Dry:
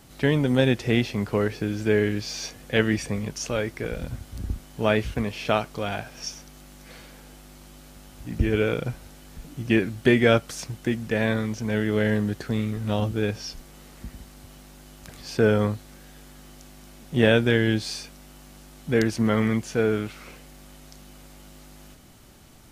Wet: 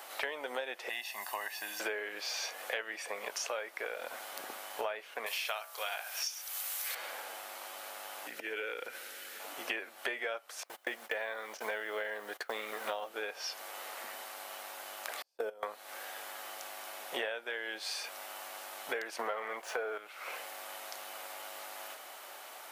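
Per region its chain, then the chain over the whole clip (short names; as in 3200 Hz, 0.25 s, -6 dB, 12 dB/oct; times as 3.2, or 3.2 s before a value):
0.89–1.8 pre-emphasis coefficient 0.8 + comb 1.1 ms, depth 83%
5.26–6.95 tilt +4.5 dB/oct + de-hum 65.29 Hz, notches 31
8.27–9.4 band shelf 840 Hz -12.5 dB 1.1 oct + compressor 4:1, threshold -33 dBFS
10.63–13.09 gate -36 dBFS, range -23 dB + notch 2600 Hz, Q 27 + companded quantiser 8-bit
15.22–15.63 gate -32 dBFS, range -24 dB + bell 1800 Hz -14 dB 2.3 oct + level quantiser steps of 21 dB
19.19–19.98 bell 710 Hz +8.5 dB 2.8 oct + sample leveller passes 1
whole clip: HPF 600 Hz 24 dB/oct; bell 6300 Hz -9 dB 1.9 oct; compressor 16:1, threshold -45 dBFS; gain +11 dB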